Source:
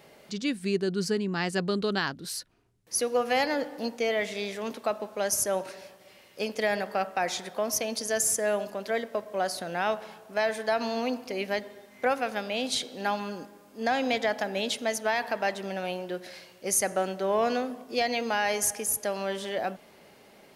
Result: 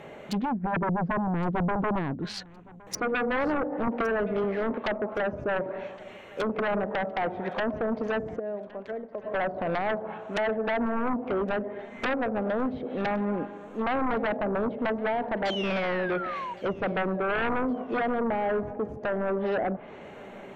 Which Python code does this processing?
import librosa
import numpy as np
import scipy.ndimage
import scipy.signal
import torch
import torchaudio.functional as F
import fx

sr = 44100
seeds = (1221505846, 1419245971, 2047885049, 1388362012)

y = fx.wiener(x, sr, points=9)
y = fx.env_lowpass_down(y, sr, base_hz=560.0, full_db=-27.5)
y = fx.pre_emphasis(y, sr, coefficient=0.8, at=(8.38, 9.23), fade=0.02)
y = fx.env_lowpass_down(y, sr, base_hz=2000.0, full_db=-31.0)
y = fx.spec_paint(y, sr, seeds[0], shape='fall', start_s=15.45, length_s=1.09, low_hz=930.0, high_hz=3400.0, level_db=-45.0)
y = fx.high_shelf(y, sr, hz=2700.0, db=-11.5, at=(18.2, 18.89))
y = fx.fold_sine(y, sr, drive_db=7, ceiling_db=-23.5)
y = fx.echo_feedback(y, sr, ms=1115, feedback_pct=36, wet_db=-22.5)
y = fx.band_squash(y, sr, depth_pct=70, at=(3.87, 4.44))